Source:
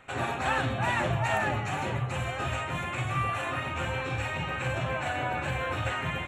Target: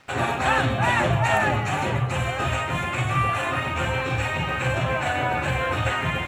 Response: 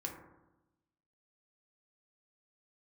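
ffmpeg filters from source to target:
-af "aeval=exprs='sgn(val(0))*max(abs(val(0))-0.00133,0)':c=same,volume=2.24"

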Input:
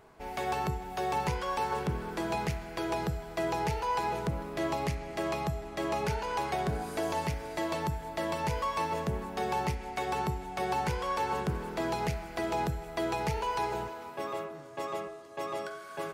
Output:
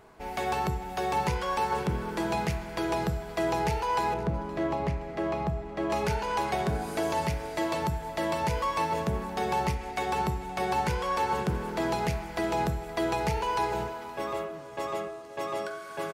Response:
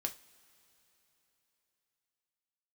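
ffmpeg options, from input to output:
-filter_complex "[0:a]asettb=1/sr,asplit=3[s0][s1][s2];[s0]atrim=end=4.144[s3];[s1]atrim=start=4.14:end=5.9,asetpts=PTS-STARTPTS,afade=t=in:d=0.004:c=qsin,afade=t=out:st=1.756:d=0.004:c=qsin,lowpass=f=1400:p=1[s4];[s2]atrim=start=5.896[s5];[s3][s4]acrossfade=d=0.004:c1=hsin:c2=qsin[s6];[s6][s5]acrossfade=d=0.004:c1=qsin:c2=hsin,aecho=1:1:521|1042|1563|2084:0.106|0.0498|0.0234|0.011,asplit=2[s7][s8];[1:a]atrim=start_sample=2205,asetrate=27783,aresample=44100[s9];[s8][s9]afir=irnorm=-1:irlink=0,volume=0.335[s10];[s7][s10]amix=inputs=2:normalize=0"

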